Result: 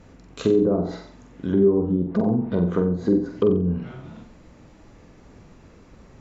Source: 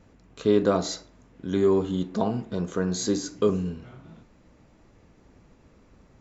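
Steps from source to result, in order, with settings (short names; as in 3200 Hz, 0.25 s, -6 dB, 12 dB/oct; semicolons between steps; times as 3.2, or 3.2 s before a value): limiter -15.5 dBFS, peak gain reduction 6.5 dB; treble ducked by the level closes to 480 Hz, closed at -23 dBFS; flutter echo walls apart 7.8 m, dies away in 0.42 s; gain +6.5 dB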